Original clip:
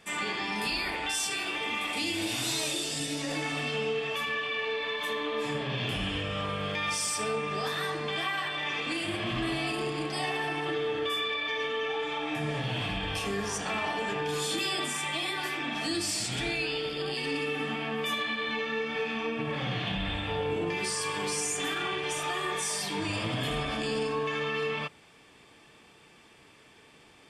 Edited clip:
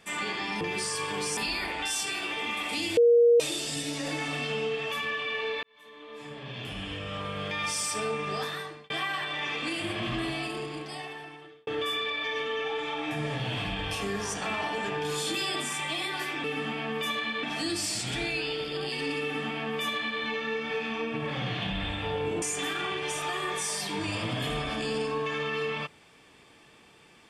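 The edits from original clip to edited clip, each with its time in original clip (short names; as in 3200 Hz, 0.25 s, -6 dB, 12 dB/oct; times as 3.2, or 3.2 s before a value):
2.21–2.64 bleep 473 Hz -15.5 dBFS
4.87–6.99 fade in
7.62–8.14 fade out
9.33–10.91 fade out
17.47–18.46 copy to 15.68
20.67–21.43 move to 0.61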